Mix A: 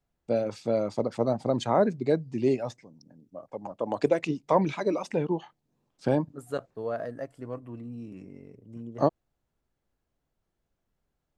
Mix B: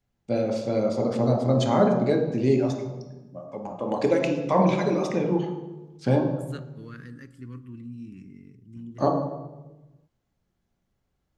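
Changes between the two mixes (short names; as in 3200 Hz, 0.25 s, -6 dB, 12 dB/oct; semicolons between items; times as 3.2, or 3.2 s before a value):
second voice: add Butterworth band-stop 660 Hz, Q 0.59; reverb: on, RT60 1.1 s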